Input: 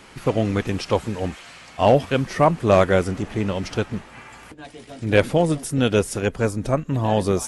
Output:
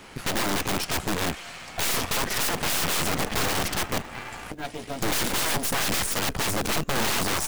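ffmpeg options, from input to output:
ffmpeg -i in.wav -af "equalizer=frequency=730:width=6.4:gain=3.5,dynaudnorm=framelen=430:gausssize=7:maxgain=11dB,aeval=exprs='(mod(11.9*val(0)+1,2)-1)/11.9':channel_layout=same,acrusher=bits=5:mode=log:mix=0:aa=0.000001,aeval=exprs='0.0944*(cos(1*acos(clip(val(0)/0.0944,-1,1)))-cos(1*PI/2))+0.0266*(cos(4*acos(clip(val(0)/0.0944,-1,1)))-cos(4*PI/2))':channel_layout=same" out.wav

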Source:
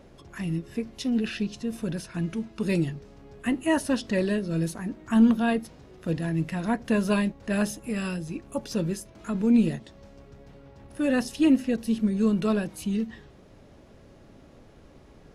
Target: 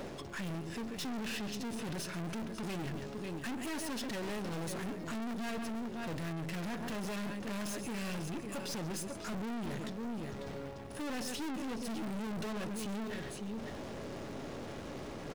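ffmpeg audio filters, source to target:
ffmpeg -i in.wav -filter_complex "[0:a]aresample=22050,aresample=44100,asplit=2[link_01][link_02];[link_02]acrusher=bits=2:mode=log:mix=0:aa=0.000001,volume=-11dB[link_03];[link_01][link_03]amix=inputs=2:normalize=0,aecho=1:1:136|547:0.15|0.158,areverse,acompressor=mode=upward:threshold=-32dB:ratio=2.5,areverse,highpass=frequency=170:poles=1,acompressor=threshold=-23dB:ratio=6,aeval=exprs='(tanh(126*val(0)+0.5)-tanh(0.5))/126':channel_layout=same,aeval=exprs='val(0)+0.000794*sin(2*PI*420*n/s)':channel_layout=same,volume=4.5dB" out.wav

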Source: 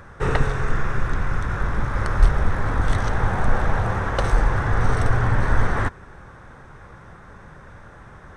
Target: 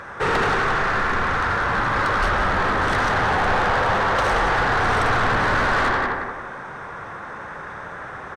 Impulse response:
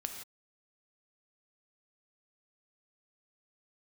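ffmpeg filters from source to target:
-filter_complex "[0:a]asplit=2[link_01][link_02];[link_02]adelay=177,lowpass=frequency=3600:poles=1,volume=-5dB,asplit=2[link_03][link_04];[link_04]adelay=177,lowpass=frequency=3600:poles=1,volume=0.36,asplit=2[link_05][link_06];[link_06]adelay=177,lowpass=frequency=3600:poles=1,volume=0.36,asplit=2[link_07][link_08];[link_08]adelay=177,lowpass=frequency=3600:poles=1,volume=0.36[link_09];[link_01][link_03][link_05][link_07][link_09]amix=inputs=5:normalize=0,asplit=2[link_10][link_11];[1:a]atrim=start_sample=2205,lowpass=2300,adelay=80[link_12];[link_11][link_12]afir=irnorm=-1:irlink=0,volume=-2dB[link_13];[link_10][link_13]amix=inputs=2:normalize=0,asplit=2[link_14][link_15];[link_15]highpass=frequency=720:poles=1,volume=27dB,asoftclip=type=tanh:threshold=-2dB[link_16];[link_14][link_16]amix=inputs=2:normalize=0,lowpass=frequency=3500:poles=1,volume=-6dB,volume=-9dB"

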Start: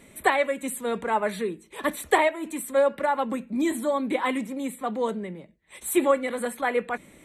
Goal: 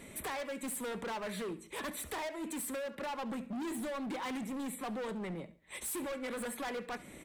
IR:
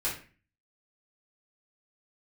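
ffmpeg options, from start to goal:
-filter_complex "[0:a]acompressor=threshold=-33dB:ratio=3,asoftclip=type=hard:threshold=-37.5dB,asplit=2[link_01][link_02];[link_02]aecho=0:1:70|140|210:0.126|0.0441|0.0154[link_03];[link_01][link_03]amix=inputs=2:normalize=0,volume=1dB"

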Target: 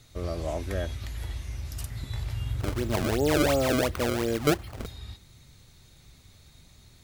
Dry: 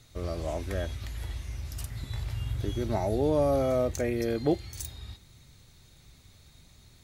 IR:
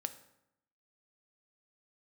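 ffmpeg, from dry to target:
-filter_complex "[0:a]asettb=1/sr,asplit=3[link_01][link_02][link_03];[link_01]atrim=end=2.604[link_04];[link_02]atrim=start=2.6:end=4.86,asetpts=PTS-STARTPTS,afade=type=in:duration=0.004:curve=qsin,afade=type=out:start_time=2.256:duration=0.004:curve=qsin,acrusher=samples=28:mix=1:aa=0.000001:lfo=1:lforange=44.8:lforate=2.8[link_05];[link_03]atrim=start=4.856[link_06];[link_04][link_05]acrossfade=duration=0.004:curve1=hsin:curve2=qsin[link_07];[link_07][link_06]acrossfade=duration=0.004:curve1=qsin:curve2=hsin,volume=1.5dB"

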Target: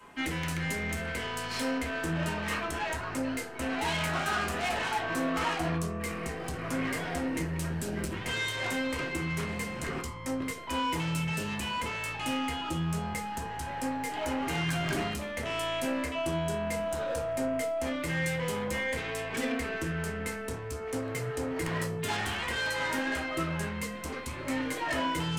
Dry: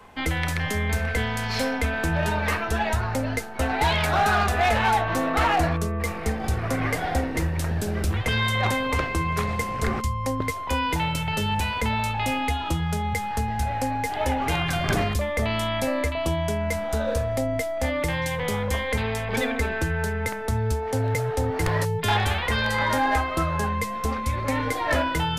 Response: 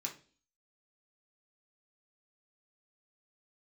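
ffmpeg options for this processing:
-filter_complex "[0:a]asoftclip=type=tanh:threshold=-24dB[link_01];[1:a]atrim=start_sample=2205,asetrate=52920,aresample=44100[link_02];[link_01][link_02]afir=irnorm=-1:irlink=0"

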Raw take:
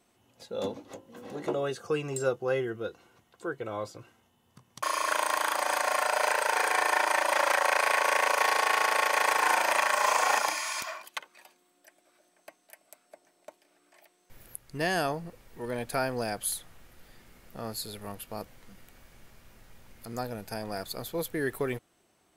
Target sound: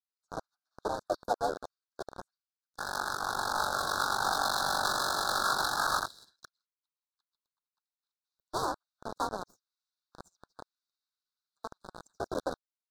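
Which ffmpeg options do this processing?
ffmpeg -i in.wav -filter_complex "[0:a]aeval=exprs='if(lt(val(0),0),0.708*val(0),val(0))':channel_layout=same,highpass=frequency=240:width=0.5412,highpass=frequency=240:width=1.3066,afreqshift=-110,asplit=4[link_01][link_02][link_03][link_04];[link_02]asetrate=37084,aresample=44100,atempo=1.18921,volume=-9dB[link_05];[link_03]asetrate=52444,aresample=44100,atempo=0.840896,volume=-6dB[link_06];[link_04]asetrate=88200,aresample=44100,atempo=0.5,volume=-16dB[link_07];[link_01][link_05][link_06][link_07]amix=inputs=4:normalize=0,acrossover=split=1600[link_08][link_09];[link_08]aeval=exprs='val(0)*gte(abs(val(0)),0.0398)':channel_layout=same[link_10];[link_10][link_09]amix=inputs=2:normalize=0,adynamicsmooth=sensitivity=3:basefreq=620,asuperstop=centerf=1400:order=12:qfactor=1.1,asetrate=76440,aresample=44100" out.wav

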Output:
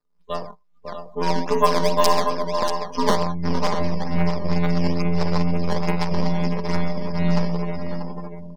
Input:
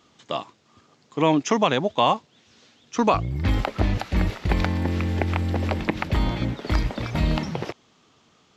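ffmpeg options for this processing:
ffmpeg -i in.wav -filter_complex "[0:a]aeval=exprs='if(lt(val(0),0),0.251*val(0),val(0))':channel_layout=same,asuperstop=centerf=4900:order=4:qfactor=3,afftfilt=real='hypot(re,im)*cos(PI*b)':imag='0':win_size=2048:overlap=0.75,aeval=exprs='(mod(2.37*val(0)+1,2)-1)/2.37':channel_layout=same,bandreject=frequency=60:width_type=h:width=6,bandreject=frequency=120:width_type=h:width=6,bandreject=frequency=180:width_type=h:width=6,aecho=1:1:4.9:0.89,asplit=2[link_01][link_02];[link_02]aecho=0:1:46|121|552:0.501|0.299|0.501[link_03];[link_01][link_03]amix=inputs=2:normalize=0,acrusher=samples=10:mix=1:aa=0.000001:lfo=1:lforange=16:lforate=2.3,equalizer=frequency=200:width_type=o:width=0.33:gain=10,equalizer=frequency=500:width_type=o:width=0.33:gain=10,equalizer=frequency=1000:width_type=o:width=0.33:gain=10,equalizer=frequency=5000:width_type=o:width=0.33:gain=11,asplit=2[link_04][link_05];[link_05]aecho=0:1:637:0.422[link_06];[link_04][link_06]amix=inputs=2:normalize=0,adynamicequalizer=threshold=0.00794:dfrequency=1400:dqfactor=3.9:tfrequency=1400:tqfactor=3.9:attack=5:release=100:ratio=0.375:range=2:mode=cutabove:tftype=bell,afftdn=noise_reduction=26:noise_floor=-38" out.wav

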